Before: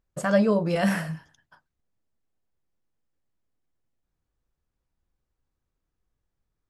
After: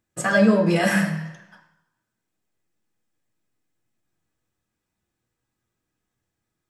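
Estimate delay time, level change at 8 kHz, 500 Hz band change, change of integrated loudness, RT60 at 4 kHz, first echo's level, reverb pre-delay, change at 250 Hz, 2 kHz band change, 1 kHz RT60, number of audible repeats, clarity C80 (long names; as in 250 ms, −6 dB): no echo audible, +8.5 dB, +3.0 dB, +4.5 dB, 1.0 s, no echo audible, 3 ms, +5.0 dB, +8.5 dB, 1.1 s, no echo audible, 11.5 dB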